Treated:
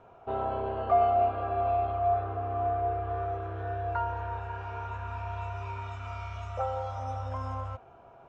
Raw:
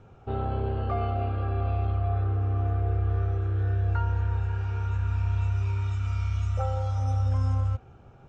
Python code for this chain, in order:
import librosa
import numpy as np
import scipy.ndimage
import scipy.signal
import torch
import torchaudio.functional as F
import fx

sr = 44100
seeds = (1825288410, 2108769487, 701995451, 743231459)

y = fx.bass_treble(x, sr, bass_db=-13, treble_db=-9)
y = fx.small_body(y, sr, hz=(680.0, 980.0), ring_ms=50, db=14)